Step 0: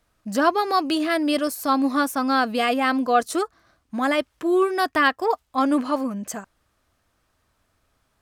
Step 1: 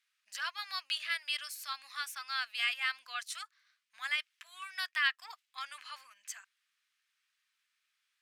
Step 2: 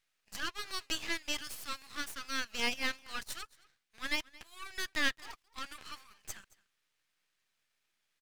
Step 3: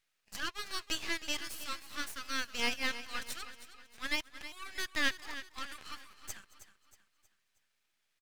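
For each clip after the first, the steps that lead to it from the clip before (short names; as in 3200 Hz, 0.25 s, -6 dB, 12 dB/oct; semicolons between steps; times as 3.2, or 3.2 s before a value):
inverse Chebyshev high-pass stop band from 360 Hz, stop band 80 dB; tilt -4.5 dB/oct; gain +3.5 dB
echo 0.222 s -22.5 dB; half-wave rectifier; gain +3.5 dB
feedback echo 0.317 s, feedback 43%, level -13 dB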